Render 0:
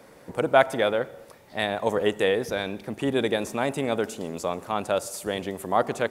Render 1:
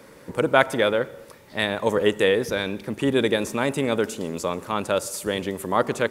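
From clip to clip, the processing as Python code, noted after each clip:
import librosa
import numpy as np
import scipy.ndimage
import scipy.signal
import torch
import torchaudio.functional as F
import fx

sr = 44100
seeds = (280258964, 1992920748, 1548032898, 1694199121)

y = fx.peak_eq(x, sr, hz=720.0, db=-10.0, octaves=0.32)
y = y * librosa.db_to_amplitude(4.0)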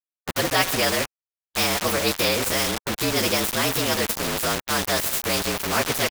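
y = fx.partial_stretch(x, sr, pct=114)
y = np.where(np.abs(y) >= 10.0 ** (-33.0 / 20.0), y, 0.0)
y = fx.spectral_comp(y, sr, ratio=2.0)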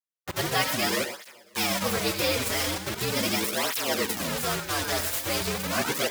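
y = fx.echo_feedback(x, sr, ms=271, feedback_pct=23, wet_db=-17.5)
y = fx.rev_gated(y, sr, seeds[0], gate_ms=130, shape='rising', drr_db=7.5)
y = fx.flanger_cancel(y, sr, hz=0.4, depth_ms=5.9)
y = y * librosa.db_to_amplitude(-2.0)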